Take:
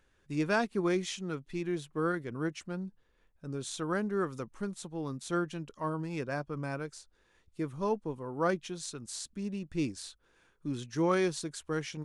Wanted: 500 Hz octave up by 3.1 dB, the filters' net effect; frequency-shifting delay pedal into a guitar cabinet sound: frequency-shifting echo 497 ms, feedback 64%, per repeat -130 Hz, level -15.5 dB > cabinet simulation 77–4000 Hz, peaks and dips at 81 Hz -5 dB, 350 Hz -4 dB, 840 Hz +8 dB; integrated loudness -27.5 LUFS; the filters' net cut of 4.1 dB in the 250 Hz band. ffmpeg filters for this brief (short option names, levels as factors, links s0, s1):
-filter_complex "[0:a]equalizer=f=250:t=o:g=-7,equalizer=f=500:t=o:g=7,asplit=8[s0][s1][s2][s3][s4][s5][s6][s7];[s1]adelay=497,afreqshift=-130,volume=0.168[s8];[s2]adelay=994,afreqshift=-260,volume=0.107[s9];[s3]adelay=1491,afreqshift=-390,volume=0.0684[s10];[s4]adelay=1988,afreqshift=-520,volume=0.0442[s11];[s5]adelay=2485,afreqshift=-650,volume=0.0282[s12];[s6]adelay=2982,afreqshift=-780,volume=0.018[s13];[s7]adelay=3479,afreqshift=-910,volume=0.0115[s14];[s0][s8][s9][s10][s11][s12][s13][s14]amix=inputs=8:normalize=0,highpass=77,equalizer=f=81:t=q:w=4:g=-5,equalizer=f=350:t=q:w=4:g=-4,equalizer=f=840:t=q:w=4:g=8,lowpass=f=4000:w=0.5412,lowpass=f=4000:w=1.3066,volume=2"